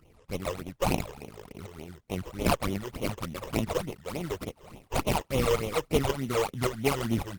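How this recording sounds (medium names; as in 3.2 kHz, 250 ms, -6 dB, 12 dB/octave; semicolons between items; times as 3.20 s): aliases and images of a low sample rate 1.7 kHz, jitter 20%; phasing stages 12, 3.4 Hz, lowest notch 220–1600 Hz; tremolo saw up 1.8 Hz, depth 60%; Opus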